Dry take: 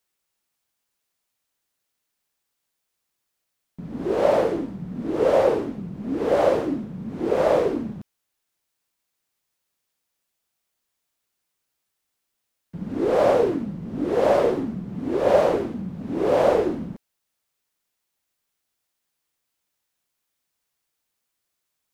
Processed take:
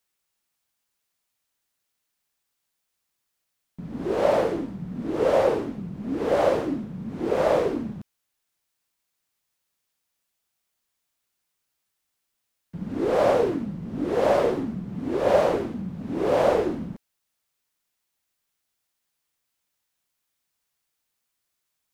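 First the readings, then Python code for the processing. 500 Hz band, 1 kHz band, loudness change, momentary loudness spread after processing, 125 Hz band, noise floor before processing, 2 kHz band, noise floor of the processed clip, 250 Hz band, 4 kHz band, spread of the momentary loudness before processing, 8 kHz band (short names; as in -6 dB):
-2.0 dB, -1.0 dB, -2.0 dB, 14 LU, -0.5 dB, -79 dBFS, -0.5 dB, -79 dBFS, -1.5 dB, 0.0 dB, 14 LU, n/a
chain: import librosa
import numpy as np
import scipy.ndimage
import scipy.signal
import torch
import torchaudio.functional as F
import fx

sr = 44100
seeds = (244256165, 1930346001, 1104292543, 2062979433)

y = fx.peak_eq(x, sr, hz=420.0, db=-2.5, octaves=1.8)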